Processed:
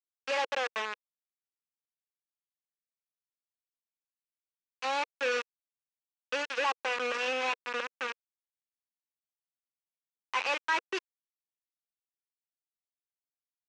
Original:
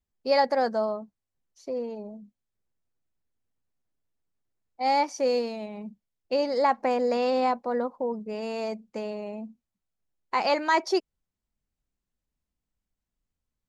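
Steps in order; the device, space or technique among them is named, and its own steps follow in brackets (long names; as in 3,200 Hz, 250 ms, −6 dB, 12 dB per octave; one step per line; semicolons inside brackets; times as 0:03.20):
hand-held game console (bit reduction 4 bits; loudspeaker in its box 470–5,700 Hz, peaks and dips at 480 Hz +4 dB, 680 Hz −9 dB, 1,100 Hz +4 dB, 1,600 Hz +5 dB, 2,600 Hz +9 dB, 4,600 Hz −6 dB)
level −8.5 dB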